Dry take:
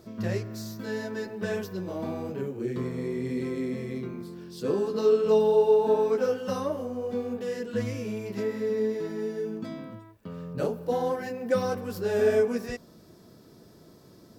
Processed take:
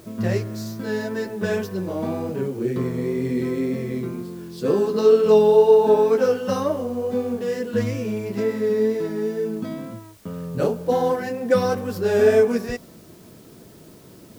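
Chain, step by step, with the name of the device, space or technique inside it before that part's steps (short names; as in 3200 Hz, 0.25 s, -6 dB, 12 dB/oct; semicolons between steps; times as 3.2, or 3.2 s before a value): plain cassette with noise reduction switched in (mismatched tape noise reduction decoder only; wow and flutter 27 cents; white noise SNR 33 dB); gain +7 dB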